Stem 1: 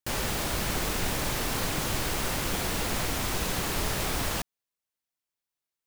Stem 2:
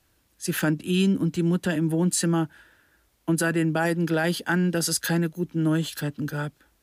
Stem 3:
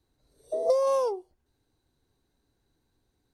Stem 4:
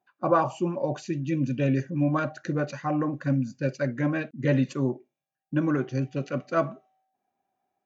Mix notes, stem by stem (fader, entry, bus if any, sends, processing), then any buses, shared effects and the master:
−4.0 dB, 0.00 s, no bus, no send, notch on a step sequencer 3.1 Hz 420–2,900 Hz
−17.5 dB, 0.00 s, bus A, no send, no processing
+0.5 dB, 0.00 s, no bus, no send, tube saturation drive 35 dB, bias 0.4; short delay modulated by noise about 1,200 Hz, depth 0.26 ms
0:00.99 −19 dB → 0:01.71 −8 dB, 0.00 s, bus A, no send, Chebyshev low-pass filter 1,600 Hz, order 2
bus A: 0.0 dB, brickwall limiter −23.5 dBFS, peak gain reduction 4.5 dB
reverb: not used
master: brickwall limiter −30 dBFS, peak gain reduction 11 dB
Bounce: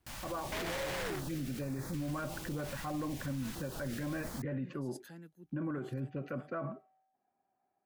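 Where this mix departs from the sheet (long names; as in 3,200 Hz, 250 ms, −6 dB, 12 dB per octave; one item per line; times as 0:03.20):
stem 1 −4.0 dB → −14.0 dB
stem 2 −17.5 dB → −27.5 dB
stem 4 −19.0 dB → −12.5 dB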